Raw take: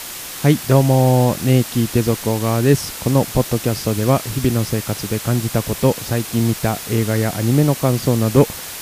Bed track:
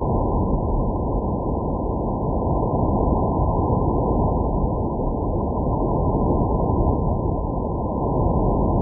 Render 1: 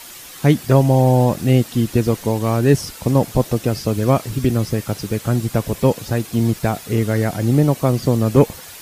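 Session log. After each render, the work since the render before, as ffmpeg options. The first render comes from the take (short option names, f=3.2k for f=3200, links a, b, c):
-af "afftdn=nr=9:nf=-31"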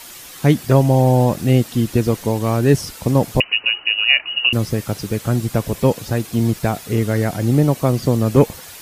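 -filter_complex "[0:a]asettb=1/sr,asplit=3[a][b][c];[a]atrim=end=3.404[d];[b]atrim=start=3.4:end=4.53,asetpts=PTS-STARTPTS,afade=t=in:d=0.004:c=qsin,afade=t=out:st=1.126:d=0.004:c=qsin,lowpass=f=2.6k:t=q:w=0.5098,lowpass=f=2.6k:t=q:w=0.6013,lowpass=f=2.6k:t=q:w=0.9,lowpass=f=2.6k:t=q:w=2.563,afreqshift=-3000[e];[c]atrim=start=4.526[f];[d][e]acrossfade=d=0.004:c1=hsin:c2=qsin[g];[g][f]acrossfade=d=0.004:c1=qsin:c2=hsin"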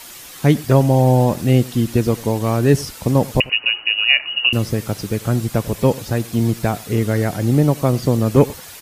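-filter_complex "[0:a]asplit=2[a][b];[b]adelay=93.29,volume=-21dB,highshelf=f=4k:g=-2.1[c];[a][c]amix=inputs=2:normalize=0"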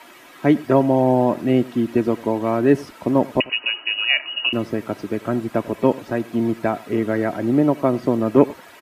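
-filter_complex "[0:a]acrossover=split=160 2600:gain=0.0891 1 0.126[a][b][c];[a][b][c]amix=inputs=3:normalize=0,aecho=1:1:3.1:0.4"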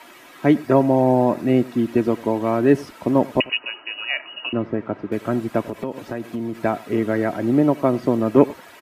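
-filter_complex "[0:a]asettb=1/sr,asplit=3[a][b][c];[a]atrim=end=0.564[d];[b]atrim=start=0.56:end=1.79,asetpts=PTS-STARTPTS,afade=t=in:d=0.004:c=qsin,afade=t=out:st=1.226:d=0.004:c=qsin,bandreject=f=3.1k:w=7.5[e];[c]atrim=start=1.786[f];[d][e]acrossfade=d=0.004:c1=hsin:c2=qsin[g];[g][f]acrossfade=d=0.004:c1=qsin:c2=hsin,asettb=1/sr,asplit=3[h][i][j];[h]atrim=end=3.574[k];[i]atrim=start=3.57:end=5.12,asetpts=PTS-STARTPTS,afade=t=in:d=0.004:c=qsin,afade=t=out:st=1.546:d=0.004:c=qsin,lowpass=1.8k[l];[j]atrim=start=5.116[m];[k][l]acrossfade=d=0.004:c1=hsin:c2=qsin[n];[n][m]acrossfade=d=0.004:c1=qsin:c2=hsin,asettb=1/sr,asplit=3[o][p][q];[o]atrim=end=5.644[r];[p]atrim=start=5.64:end=6.55,asetpts=PTS-STARTPTS,afade=t=in:d=0.004:c=qsin,afade=t=out:st=0.906:d=0.004:c=qsin,acompressor=threshold=-23dB:ratio=5:attack=3.2:release=140:knee=1:detection=peak[s];[q]atrim=start=6.546[t];[r][s]acrossfade=d=0.004:c1=hsin:c2=qsin[u];[u][t]acrossfade=d=0.004:c1=qsin:c2=hsin"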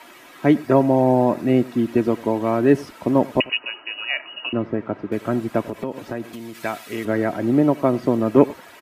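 -filter_complex "[0:a]asettb=1/sr,asplit=3[a][b][c];[a]atrim=end=6.334[d];[b]atrim=start=6.33:end=7.05,asetpts=PTS-STARTPTS,afade=t=in:d=0.004:c=qsin,afade=t=out:st=0.716:d=0.004:c=qsin,tiltshelf=f=1.5k:g=-9[e];[c]atrim=start=7.046[f];[d][e]acrossfade=d=0.004:c1=hsin:c2=qsin[g];[g][f]acrossfade=d=0.004:c1=qsin:c2=hsin"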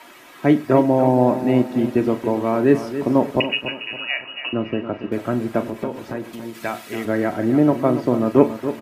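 -filter_complex "[0:a]asplit=2[a][b];[b]adelay=40,volume=-12dB[c];[a][c]amix=inputs=2:normalize=0,asplit=2[d][e];[e]aecho=0:1:281|562|843|1124:0.282|0.107|0.0407|0.0155[f];[d][f]amix=inputs=2:normalize=0"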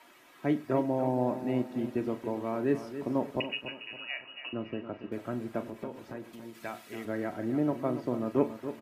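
-af "volume=-13dB"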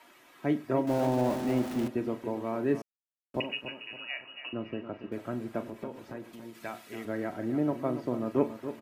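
-filter_complex "[0:a]asettb=1/sr,asplit=3[a][b][c];[a]atrim=end=0.874[d];[b]atrim=start=0.87:end=1.88,asetpts=PTS-STARTPTS,afade=t=in:d=0.004:c=qsin,afade=t=out:st=1.006:d=0.004:c=qsin,aeval=exprs='val(0)+0.5*0.02*sgn(val(0))':c=same[e];[c]atrim=start=1.876[f];[d][e]acrossfade=d=0.004:c1=hsin:c2=qsin[g];[g][f]acrossfade=d=0.004:c1=qsin:c2=hsin,asplit=3[h][i][j];[h]atrim=end=2.82,asetpts=PTS-STARTPTS,afade=t=out:st=2.816:d=0.004:c=hsin[k];[i]atrim=start=2.82:end=3.34,asetpts=PTS-STARTPTS,volume=0[l];[j]atrim=start=3.34,asetpts=PTS-STARTPTS,afade=t=in:d=0.004:c=hsin[m];[k][l][m]concat=n=3:v=0:a=1"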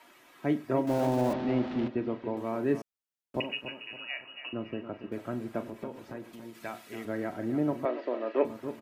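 -filter_complex "[0:a]asettb=1/sr,asplit=3[a][b][c];[a]atrim=end=1.334[d];[b]atrim=start=1.33:end=2.37,asetpts=PTS-STARTPTS,afade=t=in:d=0.004:c=qsin,afade=t=out:st=1.036:d=0.004:c=qsin,lowpass=f=4.2k:w=0.5412,lowpass=f=4.2k:w=1.3066[e];[c]atrim=start=2.366[f];[d][e]acrossfade=d=0.004:c1=hsin:c2=qsin[g];[g][f]acrossfade=d=0.004:c1=qsin:c2=hsin,asettb=1/sr,asplit=3[h][i][j];[h]atrim=end=7.854[k];[i]atrim=start=7.85:end=8.45,asetpts=PTS-STARTPTS,afade=t=in:d=0.004:c=qsin,afade=t=out:st=0.596:d=0.004:c=qsin,highpass=f=330:w=0.5412,highpass=f=330:w=1.3066,equalizer=f=580:t=q:w=4:g=6,equalizer=f=1.8k:t=q:w=4:g=9,equalizer=f=2.7k:t=q:w=4:g=7,equalizer=f=4k:t=q:w=4:g=3,lowpass=f=4.5k:w=0.5412,lowpass=f=4.5k:w=1.3066[l];[j]atrim=start=8.446[m];[k][l]acrossfade=d=0.004:c1=hsin:c2=qsin[n];[n][m]acrossfade=d=0.004:c1=qsin:c2=hsin"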